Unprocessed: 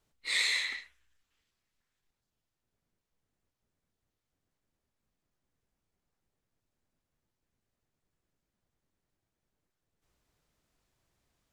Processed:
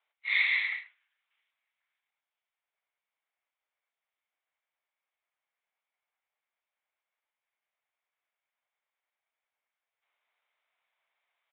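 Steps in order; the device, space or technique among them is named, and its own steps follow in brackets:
musical greeting card (downsampling to 8,000 Hz; high-pass filter 680 Hz 24 dB per octave; parametric band 2,200 Hz +9 dB 0.23 octaves)

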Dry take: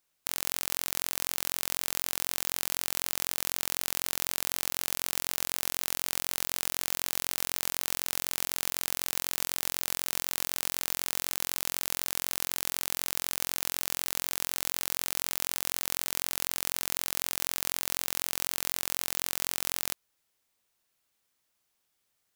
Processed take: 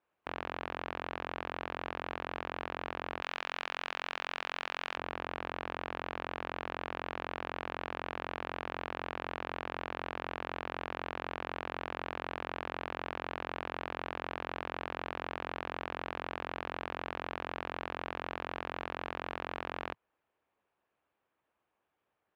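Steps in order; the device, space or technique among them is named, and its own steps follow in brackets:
bass cabinet (loudspeaker in its box 77–2,100 Hz, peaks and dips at 110 Hz −5 dB, 160 Hz −8 dB, 230 Hz −5 dB, 1,400 Hz −4 dB, 2,000 Hz −8 dB)
0:03.22–0:04.97: spectral tilt +4.5 dB per octave
harmonic and percussive parts rebalanced percussive +4 dB
level +3.5 dB

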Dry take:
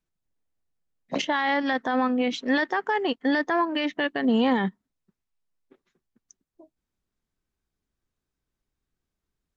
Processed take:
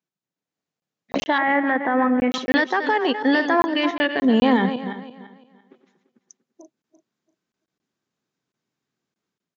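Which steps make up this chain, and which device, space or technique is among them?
feedback delay that plays each chunk backwards 170 ms, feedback 48%, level −9.5 dB
call with lost packets (high-pass filter 140 Hz 24 dB per octave; downsampling to 16,000 Hz; automatic gain control gain up to 7 dB; dropped packets of 20 ms random)
0:01.38–0:02.32: Chebyshev low-pass filter 2,100 Hz, order 3
level −2 dB

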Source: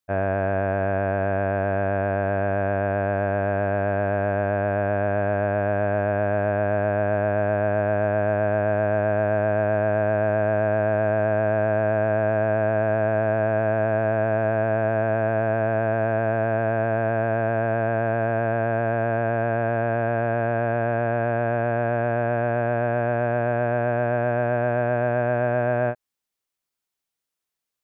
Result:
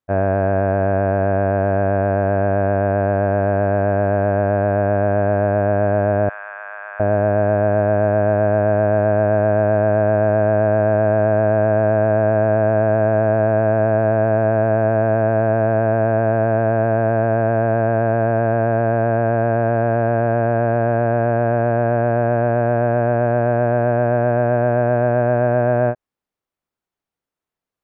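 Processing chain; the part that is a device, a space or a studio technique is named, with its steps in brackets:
through cloth (high-shelf EQ 2,300 Hz −17.5 dB)
0:06.29–0:07.00: Chebyshev high-pass filter 1,200 Hz, order 3
level +7 dB

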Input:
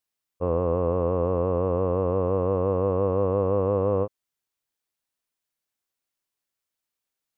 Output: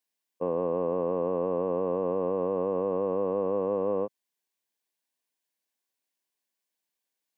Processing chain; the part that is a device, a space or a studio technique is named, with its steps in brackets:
PA system with an anti-feedback notch (high-pass filter 170 Hz 24 dB per octave; Butterworth band-reject 1,300 Hz, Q 5.3; brickwall limiter −19 dBFS, peak gain reduction 4.5 dB)

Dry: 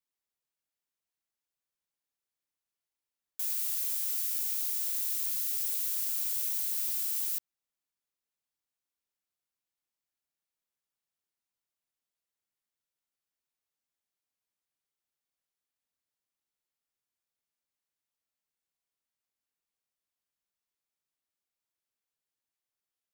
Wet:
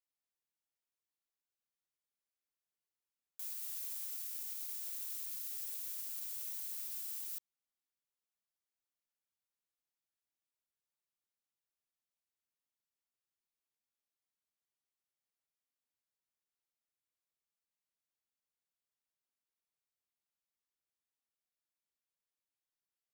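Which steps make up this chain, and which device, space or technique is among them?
limiter into clipper (brickwall limiter −26 dBFS, peak gain reduction 7 dB; hard clipping −30 dBFS, distortion −20 dB)
level −6.5 dB

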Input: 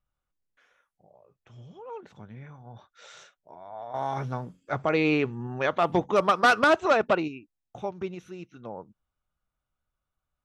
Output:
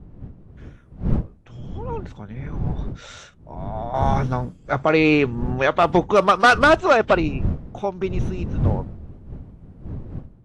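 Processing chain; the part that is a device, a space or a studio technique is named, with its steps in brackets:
smartphone video outdoors (wind on the microphone 140 Hz −36 dBFS; automatic gain control gain up to 10 dB; level −1.5 dB; AAC 64 kbit/s 24,000 Hz)

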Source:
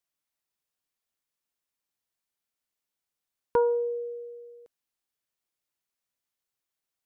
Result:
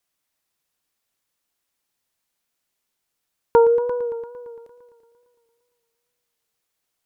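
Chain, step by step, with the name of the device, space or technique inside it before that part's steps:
multi-head tape echo (echo machine with several playback heads 114 ms, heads all three, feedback 48%, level −16.5 dB; tape wow and flutter)
level +9 dB

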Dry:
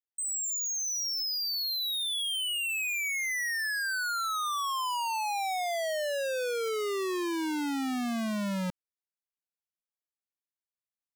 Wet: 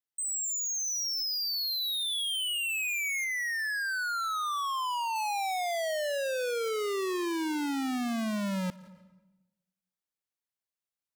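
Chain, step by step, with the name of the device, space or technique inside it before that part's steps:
saturated reverb return (on a send at −12 dB: convolution reverb RT60 0.95 s, pre-delay 98 ms + soft clipping −36 dBFS, distortion −8 dB)
0:03.24–0:05.16: on the sum: bass and treble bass −4 dB, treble −6 dB

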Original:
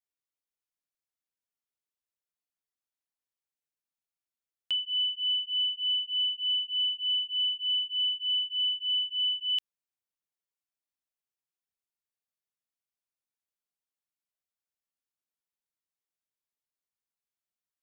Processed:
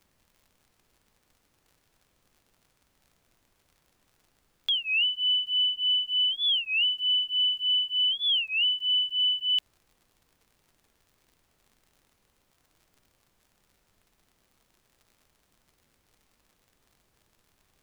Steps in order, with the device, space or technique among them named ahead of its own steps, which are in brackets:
warped LP (wow of a warped record 33 1/3 rpm, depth 250 cents; surface crackle; pink noise bed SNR 39 dB)
level +3.5 dB

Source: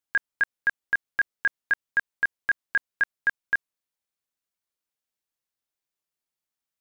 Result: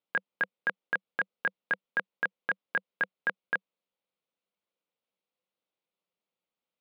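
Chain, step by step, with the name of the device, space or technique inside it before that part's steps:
kitchen radio (loudspeaker in its box 170–3,700 Hz, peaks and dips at 190 Hz +8 dB, 510 Hz +9 dB, 1,700 Hz −10 dB)
level +2.5 dB

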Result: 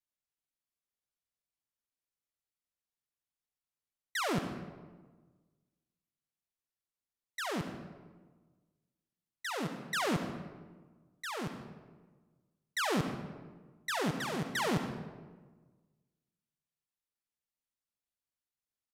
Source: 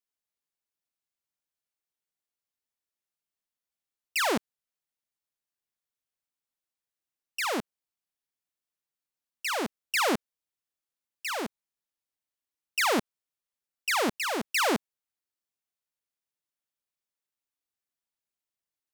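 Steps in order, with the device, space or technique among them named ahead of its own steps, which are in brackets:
monster voice (pitch shifter −6 semitones; low-shelf EQ 160 Hz +8 dB; convolution reverb RT60 1.4 s, pre-delay 62 ms, DRR 7 dB)
level −7 dB

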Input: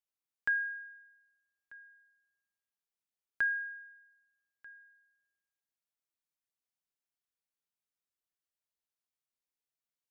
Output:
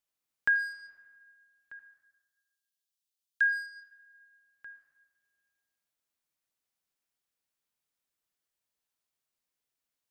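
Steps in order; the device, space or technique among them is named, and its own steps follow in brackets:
0:01.79–0:03.41: inverse Chebyshev high-pass filter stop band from 1,500 Hz, stop band 40 dB
saturated reverb return (on a send at −10 dB: convolution reverb RT60 1.3 s, pre-delay 54 ms + soft clipping −33.5 dBFS, distortion −9 dB)
on the sum: level +5 dB

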